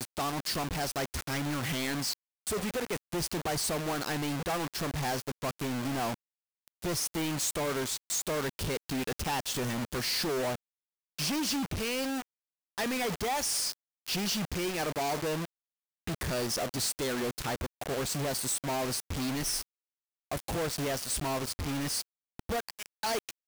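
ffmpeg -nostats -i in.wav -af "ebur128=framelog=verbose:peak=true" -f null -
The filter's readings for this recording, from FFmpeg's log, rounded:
Integrated loudness:
  I:         -32.3 LUFS
  Threshold: -42.5 LUFS
Loudness range:
  LRA:         1.6 LU
  Threshold: -52.6 LUFS
  LRA low:   -33.4 LUFS
  LRA high:  -31.8 LUFS
True peak:
  Peak:      -24.0 dBFS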